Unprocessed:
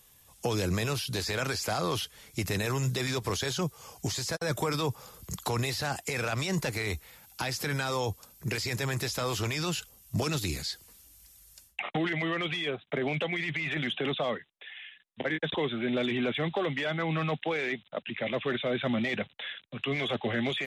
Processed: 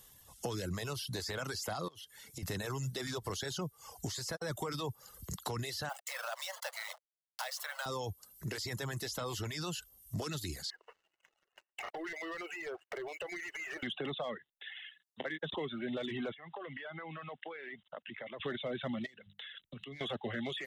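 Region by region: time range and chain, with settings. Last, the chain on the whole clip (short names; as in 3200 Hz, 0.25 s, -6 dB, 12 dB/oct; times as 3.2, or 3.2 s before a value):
1.88–2.43 HPF 90 Hz + compressor 12:1, threshold -41 dBFS
5.89–7.86 level-crossing sampler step -34 dBFS + steep high-pass 540 Hz 96 dB/oct
10.7–13.83 compressor 3:1, threshold -46 dBFS + brick-wall FIR band-pass 320–3000 Hz + sample leveller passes 3
14.73–15.41 HPF 100 Hz + low shelf 260 Hz -8.5 dB
16.34–18.4 low shelf 360 Hz -10.5 dB + compressor, threshold -39 dBFS + LPF 2900 Hz 24 dB/oct
19.06–20.01 bell 820 Hz -9.5 dB 1.6 oct + notches 50/100/150/200 Hz + compressor 20:1, threshold -42 dBFS
whole clip: reverb removal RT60 0.73 s; notch 2400 Hz, Q 5.6; compressor 2:1, threshold -43 dBFS; gain +1 dB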